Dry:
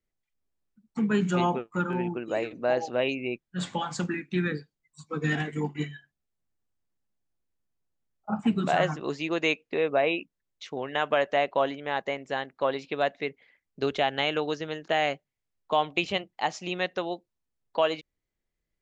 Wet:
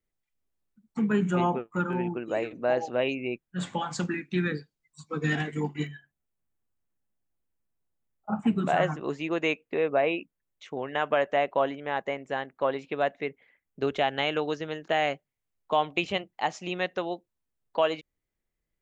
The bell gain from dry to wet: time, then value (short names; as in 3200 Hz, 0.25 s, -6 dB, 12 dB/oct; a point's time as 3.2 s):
bell 4700 Hz 0.93 oct
-3 dB
from 1.12 s -14 dB
from 1.76 s -6 dB
from 3.93 s +1 dB
from 5.87 s -11 dB
from 13.96 s -5 dB